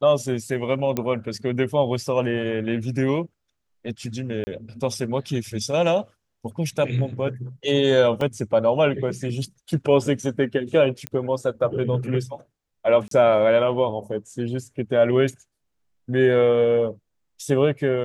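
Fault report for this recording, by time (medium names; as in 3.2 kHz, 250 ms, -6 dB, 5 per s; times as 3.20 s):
0.97 s: pop -10 dBFS
4.44–4.47 s: dropout 30 ms
8.21 s: dropout 2.2 ms
11.07 s: pop -12 dBFS
13.08–13.11 s: dropout 33 ms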